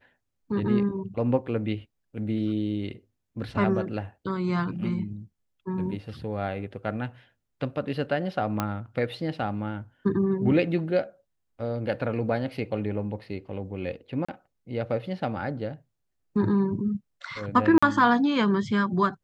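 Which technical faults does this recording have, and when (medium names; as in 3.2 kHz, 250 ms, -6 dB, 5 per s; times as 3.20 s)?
8.60 s: pop -12 dBFS
14.25–14.29 s: dropout 35 ms
17.78–17.82 s: dropout 45 ms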